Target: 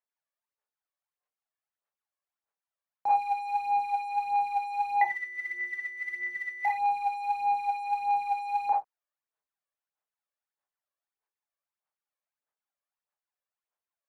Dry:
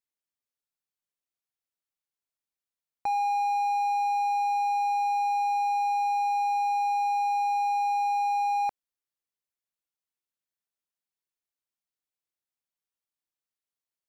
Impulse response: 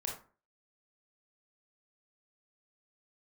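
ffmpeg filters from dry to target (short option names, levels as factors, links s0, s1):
-filter_complex "[0:a]asettb=1/sr,asplit=3[s0][s1][s2];[s0]atrim=end=5.014[s3];[s1]atrim=start=5.01:end=6.65,asetpts=PTS-STARTPTS,afade=t=in:d=0.004:c=qsin,afade=t=out:st=1.636:d=0.004:c=qsin,lowpass=f=2400:t=q:w=0.5098,lowpass=f=2400:t=q:w=0.6013,lowpass=f=2400:t=q:w=0.9,lowpass=f=2400:t=q:w=2.563,afreqshift=-2800[s4];[s2]atrim=start=6.646[s5];[s3][s4]acrossfade=d=0.004:c1=hsin:c2=qsin[s6];[s6][s5]acrossfade=d=0.004:c1=qsin:c2=hsin,asplit=2[s7][s8];[s8]asoftclip=type=tanh:threshold=0.0266,volume=0.376[s9];[s7][s9]amix=inputs=2:normalize=0,acrossover=split=530 2000:gain=0.0891 1 0.2[s10][s11][s12];[s10][s11][s12]amix=inputs=3:normalize=0[s13];[1:a]atrim=start_sample=2205,atrim=end_sample=6615[s14];[s13][s14]afir=irnorm=-1:irlink=0,aphaser=in_gain=1:out_gain=1:delay=1.8:decay=0.6:speed=1.6:type=sinusoidal"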